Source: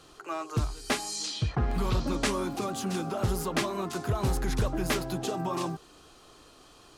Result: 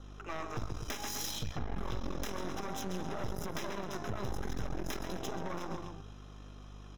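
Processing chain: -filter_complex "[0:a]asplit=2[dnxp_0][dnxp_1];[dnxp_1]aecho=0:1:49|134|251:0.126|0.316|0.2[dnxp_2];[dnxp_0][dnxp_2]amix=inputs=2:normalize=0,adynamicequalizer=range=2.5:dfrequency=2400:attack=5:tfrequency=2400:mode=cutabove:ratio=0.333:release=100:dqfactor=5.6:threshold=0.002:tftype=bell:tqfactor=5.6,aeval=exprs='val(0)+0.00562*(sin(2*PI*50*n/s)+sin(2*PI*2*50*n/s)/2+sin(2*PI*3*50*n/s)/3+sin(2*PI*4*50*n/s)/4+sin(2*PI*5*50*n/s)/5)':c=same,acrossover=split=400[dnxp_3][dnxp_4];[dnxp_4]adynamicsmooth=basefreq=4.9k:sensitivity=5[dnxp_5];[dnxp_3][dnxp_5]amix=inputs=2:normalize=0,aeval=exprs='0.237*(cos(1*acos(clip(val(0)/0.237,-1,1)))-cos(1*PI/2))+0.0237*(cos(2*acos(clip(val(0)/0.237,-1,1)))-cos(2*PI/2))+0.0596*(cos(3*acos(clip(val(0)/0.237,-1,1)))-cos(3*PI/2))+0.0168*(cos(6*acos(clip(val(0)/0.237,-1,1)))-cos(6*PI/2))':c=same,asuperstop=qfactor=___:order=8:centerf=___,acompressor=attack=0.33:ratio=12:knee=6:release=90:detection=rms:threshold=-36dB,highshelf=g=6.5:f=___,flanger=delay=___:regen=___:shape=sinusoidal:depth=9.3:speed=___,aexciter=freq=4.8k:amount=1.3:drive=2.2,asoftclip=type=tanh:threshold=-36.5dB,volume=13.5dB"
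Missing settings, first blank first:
5.3, 4500, 8.2k, 1, 89, 0.59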